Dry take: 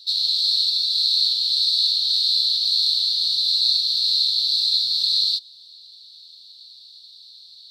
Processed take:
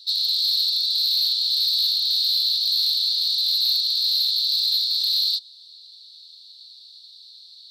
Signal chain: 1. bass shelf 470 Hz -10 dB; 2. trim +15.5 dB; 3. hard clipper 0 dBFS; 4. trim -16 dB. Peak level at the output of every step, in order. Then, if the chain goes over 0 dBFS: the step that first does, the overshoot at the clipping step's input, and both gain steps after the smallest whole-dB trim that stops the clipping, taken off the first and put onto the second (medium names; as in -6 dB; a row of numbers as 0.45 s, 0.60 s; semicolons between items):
-6.0 dBFS, +9.5 dBFS, 0.0 dBFS, -16.0 dBFS; step 2, 9.5 dB; step 2 +5.5 dB, step 4 -6 dB